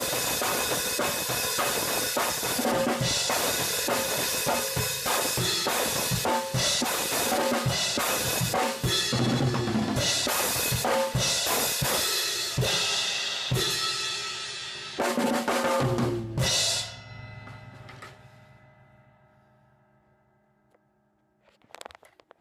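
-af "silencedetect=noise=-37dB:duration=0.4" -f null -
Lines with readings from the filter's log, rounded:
silence_start: 18.09
silence_end: 21.75 | silence_duration: 3.66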